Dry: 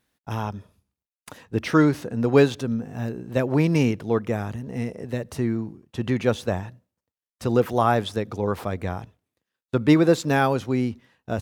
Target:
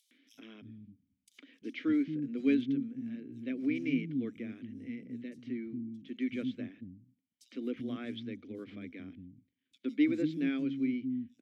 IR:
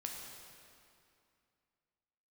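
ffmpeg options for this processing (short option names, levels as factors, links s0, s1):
-filter_complex "[0:a]asplit=3[s0][s1][s2];[s0]bandpass=f=270:t=q:w=8,volume=1[s3];[s1]bandpass=f=2290:t=q:w=8,volume=0.501[s4];[s2]bandpass=f=3010:t=q:w=8,volume=0.355[s5];[s3][s4][s5]amix=inputs=3:normalize=0,acrossover=split=240|5600[s6][s7][s8];[s7]adelay=110[s9];[s6]adelay=340[s10];[s10][s9][s8]amix=inputs=3:normalize=0,acompressor=mode=upward:threshold=0.00316:ratio=2.5"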